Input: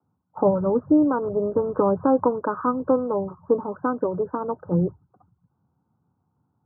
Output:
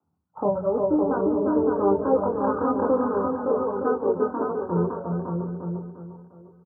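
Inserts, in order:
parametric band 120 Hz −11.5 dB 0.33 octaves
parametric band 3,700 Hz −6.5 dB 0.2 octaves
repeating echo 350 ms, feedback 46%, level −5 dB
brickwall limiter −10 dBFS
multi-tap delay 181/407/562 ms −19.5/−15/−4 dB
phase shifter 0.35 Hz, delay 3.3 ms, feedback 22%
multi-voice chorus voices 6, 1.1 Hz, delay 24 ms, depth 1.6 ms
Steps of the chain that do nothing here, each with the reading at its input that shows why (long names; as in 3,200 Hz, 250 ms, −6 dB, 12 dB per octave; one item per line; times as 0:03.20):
parametric band 3,700 Hz: nothing at its input above 1,500 Hz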